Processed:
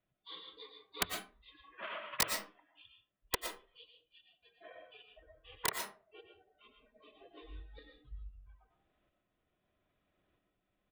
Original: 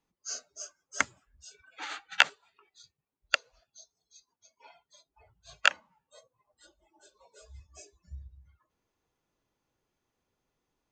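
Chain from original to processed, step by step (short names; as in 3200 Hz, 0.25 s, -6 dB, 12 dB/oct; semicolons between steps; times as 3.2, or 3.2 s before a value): steep low-pass 5100 Hz 72 dB/oct; notch 1200 Hz, Q 6.5; pitch shift -5.5 st; bell 240 Hz -5 dB 0.36 oct; in parallel at 0 dB: compressor, threshold -54 dBFS, peak gain reduction 35.5 dB; on the sum: wrapped overs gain 17 dB; tremolo saw up 0.77 Hz, depth 60%; on a send at -4 dB: resonant low shelf 160 Hz -6.5 dB, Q 3 + reverb RT60 0.35 s, pre-delay 75 ms; on the sum: gain -1 dB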